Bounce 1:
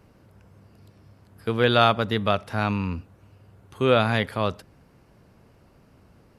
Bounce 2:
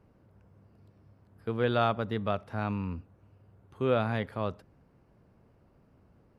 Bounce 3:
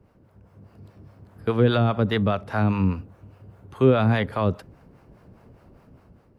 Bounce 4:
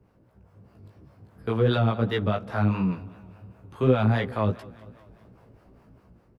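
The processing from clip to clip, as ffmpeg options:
-af "highshelf=f=2.3k:g=-12,volume=-6.5dB"
-filter_complex "[0:a]acrossover=split=310[a][b];[b]alimiter=level_in=2.5dB:limit=-24dB:level=0:latency=1:release=135,volume=-2.5dB[c];[a][c]amix=inputs=2:normalize=0,acrossover=split=550[d][e];[d]aeval=exprs='val(0)*(1-0.7/2+0.7/2*cos(2*PI*4.9*n/s))':c=same[f];[e]aeval=exprs='val(0)*(1-0.7/2-0.7/2*cos(2*PI*4.9*n/s))':c=same[g];[f][g]amix=inputs=2:normalize=0,dynaudnorm=f=230:g=5:m=7dB,volume=8dB"
-filter_complex "[0:a]aecho=1:1:199|398|597|796|995:0.1|0.058|0.0336|0.0195|0.0113,asplit=2[a][b];[b]asoftclip=type=hard:threshold=-17dB,volume=-12dB[c];[a][c]amix=inputs=2:normalize=0,flanger=delay=15.5:depth=3.3:speed=2.8,volume=-2dB"

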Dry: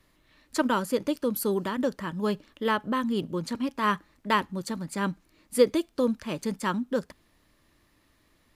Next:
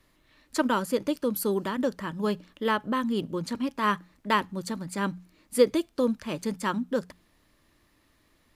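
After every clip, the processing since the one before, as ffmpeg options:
-af "bandreject=f=60:t=h:w=6,bandreject=f=120:t=h:w=6,bandreject=f=180:t=h:w=6"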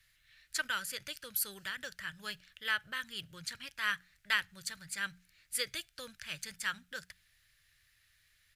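-af "firequalizer=gain_entry='entry(130,0);entry(230,-24);entry(700,-10);entry(990,-15);entry(1500,8)':delay=0.05:min_phase=1,volume=-8dB"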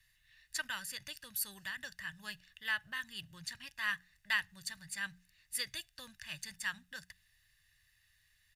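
-af "aecho=1:1:1.1:0.62,volume=-4dB"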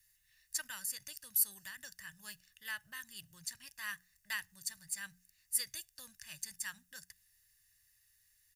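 -af "aexciter=amount=3.4:drive=6.8:freq=5.1k,volume=-7dB"

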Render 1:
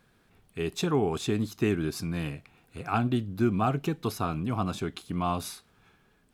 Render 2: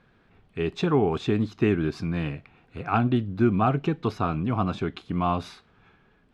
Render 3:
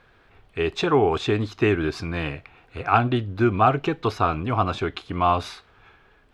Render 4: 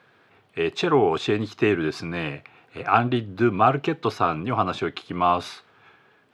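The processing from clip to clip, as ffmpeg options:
-af "lowpass=3.1k,volume=4dB"
-af "equalizer=f=190:t=o:w=1.2:g=-13,volume=7dB"
-af "highpass=f=120:w=0.5412,highpass=f=120:w=1.3066"

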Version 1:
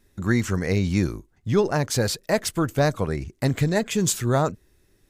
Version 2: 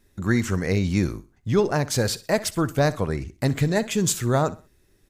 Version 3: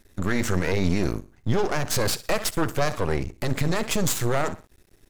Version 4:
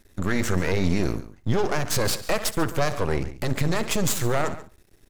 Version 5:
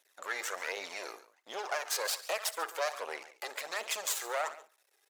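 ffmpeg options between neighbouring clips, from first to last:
-af "aecho=1:1:63|126|189:0.126|0.0403|0.0129"
-af "alimiter=limit=-17.5dB:level=0:latency=1:release=22,aeval=exprs='max(val(0),0)':c=same,volume=7dB"
-filter_complex "[0:a]asplit=2[a][b];[b]adelay=139.9,volume=-15dB,highshelf=f=4k:g=-3.15[c];[a][c]amix=inputs=2:normalize=0"
-af "highpass=f=590:w=0.5412,highpass=f=590:w=1.3066,flanger=delay=0.3:depth=2.2:regen=37:speed=1.3:shape=sinusoidal,volume=-2.5dB"

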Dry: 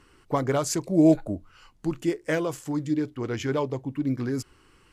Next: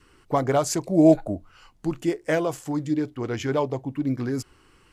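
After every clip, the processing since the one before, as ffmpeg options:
-af "adynamicequalizer=threshold=0.00891:dfrequency=720:dqfactor=2.6:tfrequency=720:tqfactor=2.6:attack=5:release=100:ratio=0.375:range=3.5:mode=boostabove:tftype=bell,volume=1dB"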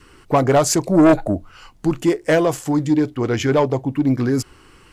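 -af "asoftclip=type=tanh:threshold=-16dB,volume=9dB"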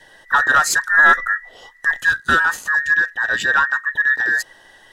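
-af "afftfilt=real='real(if(between(b,1,1012),(2*floor((b-1)/92)+1)*92-b,b),0)':imag='imag(if(between(b,1,1012),(2*floor((b-1)/92)+1)*92-b,b),0)*if(between(b,1,1012),-1,1)':win_size=2048:overlap=0.75"

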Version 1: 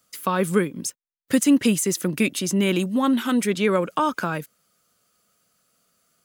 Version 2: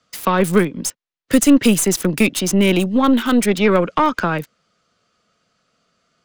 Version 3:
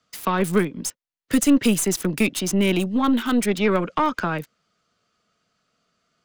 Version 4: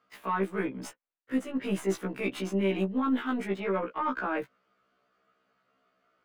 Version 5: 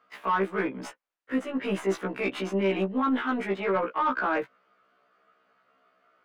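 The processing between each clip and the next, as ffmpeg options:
-filter_complex "[0:a]aeval=exprs='0.473*(cos(1*acos(clip(val(0)/0.473,-1,1)))-cos(1*PI/2))+0.0299*(cos(6*acos(clip(val(0)/0.473,-1,1)))-cos(6*PI/2))':c=same,acrossover=split=210|590|5900[a][b][c][d];[d]acrusher=bits=5:mix=0:aa=0.000001[e];[a][b][c][e]amix=inputs=4:normalize=0,volume=5.5dB"
-af "bandreject=f=530:w=12,volume=-5dB"
-filter_complex "[0:a]acrossover=split=240 2600:gain=0.251 1 0.1[a][b][c];[a][b][c]amix=inputs=3:normalize=0,areverse,acompressor=threshold=-28dB:ratio=10,areverse,afftfilt=real='re*1.73*eq(mod(b,3),0)':imag='im*1.73*eq(mod(b,3),0)':win_size=2048:overlap=0.75,volume=4dB"
-filter_complex "[0:a]asplit=2[a][b];[b]highpass=f=720:p=1,volume=12dB,asoftclip=type=tanh:threshold=-16.5dB[c];[a][c]amix=inputs=2:normalize=0,lowpass=f=1.8k:p=1,volume=-6dB,volume=2dB"

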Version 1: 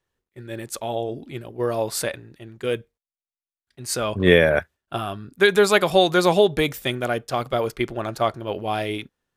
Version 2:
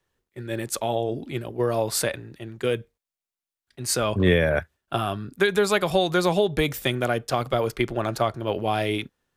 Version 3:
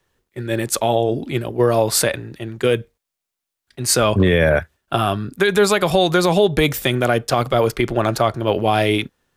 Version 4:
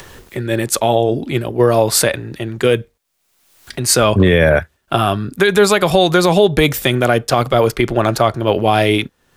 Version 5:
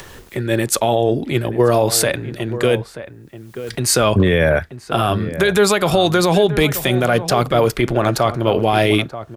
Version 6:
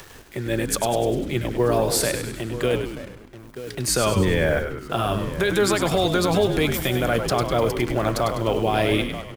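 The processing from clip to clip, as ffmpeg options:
-filter_complex "[0:a]acrossover=split=140[a][b];[b]acompressor=threshold=-25dB:ratio=2.5[c];[a][c]amix=inputs=2:normalize=0,volume=3.5dB"
-af "alimiter=level_in=12dB:limit=-1dB:release=50:level=0:latency=1,volume=-4dB"
-af "acompressor=mode=upward:threshold=-21dB:ratio=2.5,volume=3.5dB"
-filter_complex "[0:a]alimiter=limit=-5dB:level=0:latency=1:release=40,asplit=2[a][b];[b]adelay=932.9,volume=-12dB,highshelf=f=4k:g=-21[c];[a][c]amix=inputs=2:normalize=0"
-filter_complex "[0:a]acrusher=bits=5:mix=0:aa=0.5,asplit=7[a][b][c][d][e][f][g];[b]adelay=100,afreqshift=-74,volume=-7.5dB[h];[c]adelay=200,afreqshift=-148,volume=-13.2dB[i];[d]adelay=300,afreqshift=-222,volume=-18.9dB[j];[e]adelay=400,afreqshift=-296,volume=-24.5dB[k];[f]adelay=500,afreqshift=-370,volume=-30.2dB[l];[g]adelay=600,afreqshift=-444,volume=-35.9dB[m];[a][h][i][j][k][l][m]amix=inputs=7:normalize=0,volume=-6.5dB"

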